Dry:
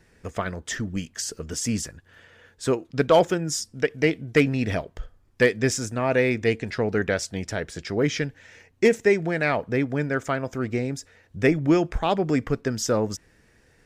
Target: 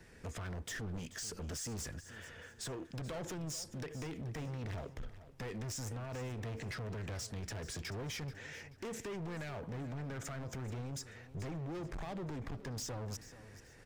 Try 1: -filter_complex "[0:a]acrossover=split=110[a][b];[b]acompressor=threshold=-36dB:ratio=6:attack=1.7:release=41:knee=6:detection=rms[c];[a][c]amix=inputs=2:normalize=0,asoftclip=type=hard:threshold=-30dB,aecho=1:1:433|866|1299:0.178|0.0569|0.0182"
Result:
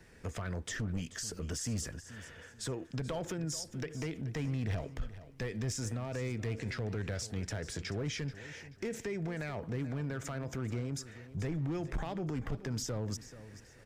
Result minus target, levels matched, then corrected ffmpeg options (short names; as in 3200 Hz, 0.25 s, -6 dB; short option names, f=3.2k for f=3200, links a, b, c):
hard clip: distortion -7 dB
-filter_complex "[0:a]acrossover=split=110[a][b];[b]acompressor=threshold=-36dB:ratio=6:attack=1.7:release=41:knee=6:detection=rms[c];[a][c]amix=inputs=2:normalize=0,asoftclip=type=hard:threshold=-39.5dB,aecho=1:1:433|866|1299:0.178|0.0569|0.0182"